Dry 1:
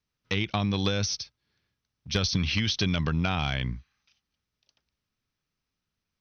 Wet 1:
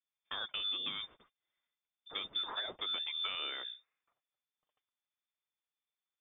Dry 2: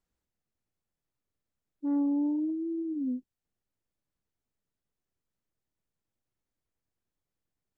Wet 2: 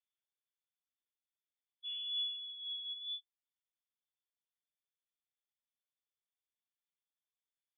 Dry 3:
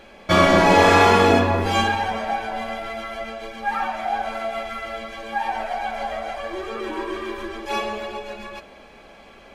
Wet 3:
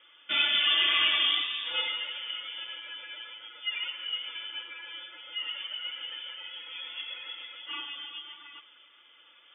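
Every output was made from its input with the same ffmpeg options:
-af "highpass=f=93:w=0.5412,highpass=f=93:w=1.3066,flanger=delay=4.3:depth=2.6:regen=33:speed=1.6:shape=triangular,lowpass=f=3.1k:t=q:w=0.5098,lowpass=f=3.1k:t=q:w=0.6013,lowpass=f=3.1k:t=q:w=0.9,lowpass=f=3.1k:t=q:w=2.563,afreqshift=-3700,volume=-7.5dB"

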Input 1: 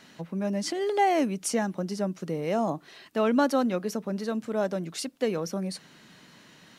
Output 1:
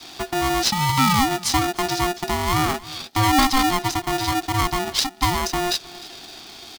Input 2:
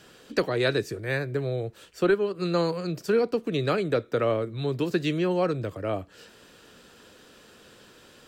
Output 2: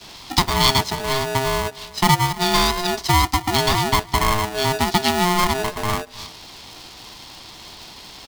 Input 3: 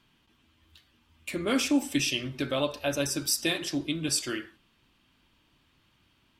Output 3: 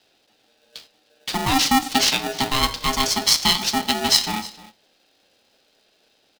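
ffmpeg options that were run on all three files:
-filter_complex "[0:a]equalizer=f=7.3k:t=o:w=1.1:g=-6.5,acrossover=split=790|6000[a][b][c];[a]acontrast=39[d];[b]highshelf=f=2.9k:t=q:w=3:g=13[e];[d][e][c]amix=inputs=3:normalize=0,aecho=1:1:305:0.075,afreqshift=-13,asplit=2[f][g];[g]acompressor=threshold=-31dB:ratio=6,volume=-2dB[h];[f][h]amix=inputs=2:normalize=0,agate=range=-8dB:threshold=-45dB:ratio=16:detection=peak,aeval=exprs='val(0)*sgn(sin(2*PI*530*n/s))':c=same"

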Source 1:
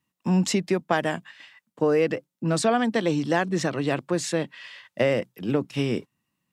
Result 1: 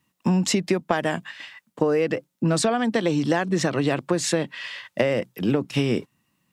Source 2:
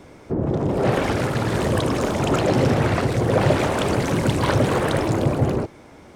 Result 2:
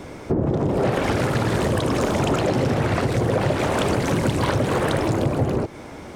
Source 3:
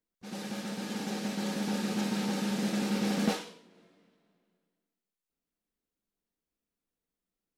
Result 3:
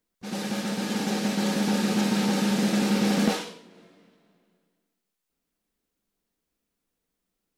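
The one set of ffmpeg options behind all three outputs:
-af "acompressor=threshold=-26dB:ratio=6,volume=8dB"

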